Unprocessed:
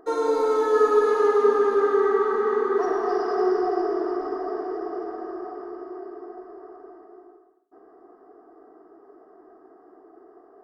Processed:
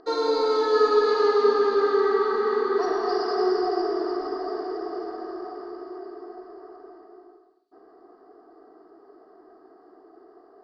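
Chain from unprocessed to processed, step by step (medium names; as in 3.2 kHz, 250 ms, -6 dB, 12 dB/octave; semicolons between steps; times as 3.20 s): resonant low-pass 4.5 kHz, resonance Q 9.4; trim -1 dB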